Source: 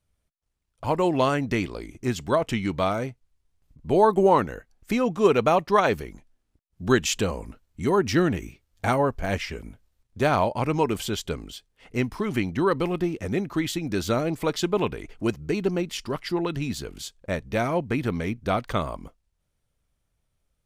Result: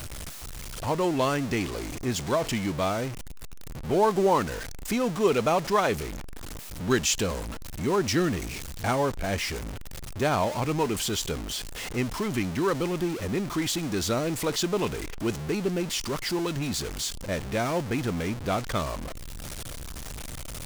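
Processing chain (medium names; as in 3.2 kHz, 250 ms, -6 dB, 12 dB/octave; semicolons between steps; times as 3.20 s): jump at every zero crossing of -26 dBFS; dynamic bell 6.5 kHz, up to +5 dB, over -41 dBFS, Q 0.83; trim -5 dB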